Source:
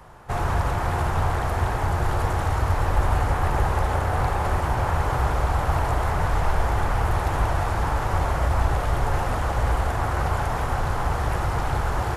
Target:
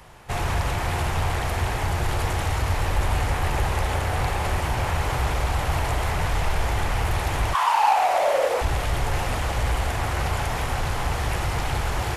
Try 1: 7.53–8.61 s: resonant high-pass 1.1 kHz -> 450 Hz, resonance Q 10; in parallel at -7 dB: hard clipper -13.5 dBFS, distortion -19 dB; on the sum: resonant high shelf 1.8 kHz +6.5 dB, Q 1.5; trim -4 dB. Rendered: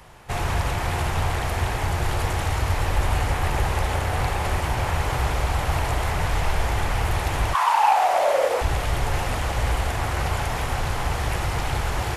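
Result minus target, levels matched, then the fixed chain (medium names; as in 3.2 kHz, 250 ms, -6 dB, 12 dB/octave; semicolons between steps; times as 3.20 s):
hard clipper: distortion -9 dB
7.53–8.61 s: resonant high-pass 1.1 kHz -> 450 Hz, resonance Q 10; in parallel at -7 dB: hard clipper -19.5 dBFS, distortion -10 dB; on the sum: resonant high shelf 1.8 kHz +6.5 dB, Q 1.5; trim -4 dB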